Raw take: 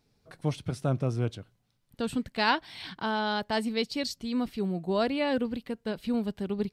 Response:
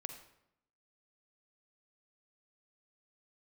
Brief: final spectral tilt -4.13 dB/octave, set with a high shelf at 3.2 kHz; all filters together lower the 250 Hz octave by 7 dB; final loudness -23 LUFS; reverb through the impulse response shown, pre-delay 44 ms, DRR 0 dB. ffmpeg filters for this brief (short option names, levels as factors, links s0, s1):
-filter_complex "[0:a]equalizer=f=250:t=o:g=-8.5,highshelf=f=3200:g=-6,asplit=2[s0][s1];[1:a]atrim=start_sample=2205,adelay=44[s2];[s1][s2]afir=irnorm=-1:irlink=0,volume=1.33[s3];[s0][s3]amix=inputs=2:normalize=0,volume=2.51"